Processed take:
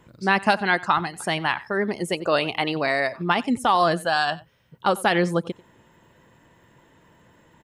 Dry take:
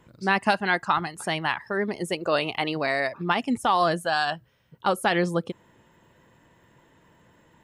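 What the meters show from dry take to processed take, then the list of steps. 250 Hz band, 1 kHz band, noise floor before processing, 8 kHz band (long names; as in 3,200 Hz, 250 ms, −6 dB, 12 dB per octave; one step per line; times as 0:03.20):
+2.5 dB, +2.5 dB, −61 dBFS, +2.5 dB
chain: single-tap delay 92 ms −21 dB
level +2.5 dB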